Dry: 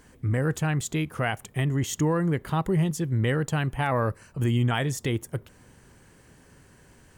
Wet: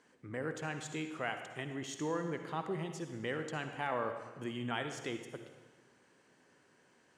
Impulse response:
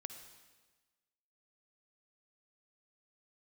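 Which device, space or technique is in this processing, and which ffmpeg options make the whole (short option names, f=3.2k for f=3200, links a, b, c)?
supermarket ceiling speaker: -filter_complex "[0:a]highpass=280,lowpass=6.2k[a];[1:a]atrim=start_sample=2205[b];[a][b]afir=irnorm=-1:irlink=0,volume=-5dB"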